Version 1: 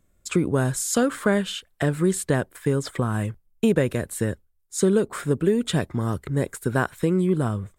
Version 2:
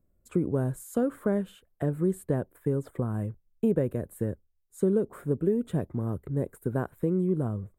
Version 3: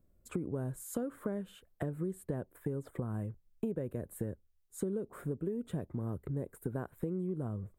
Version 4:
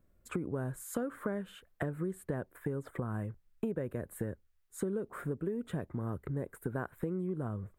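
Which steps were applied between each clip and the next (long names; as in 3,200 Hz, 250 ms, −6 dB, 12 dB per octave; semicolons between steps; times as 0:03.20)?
drawn EQ curve 520 Hz 0 dB, 5,400 Hz −24 dB, 13,000 Hz −4 dB; level −5 dB
downward compressor 4 to 1, threshold −36 dBFS, peak gain reduction 13.5 dB; level +1 dB
parametric band 1,600 Hz +8.5 dB 1.7 octaves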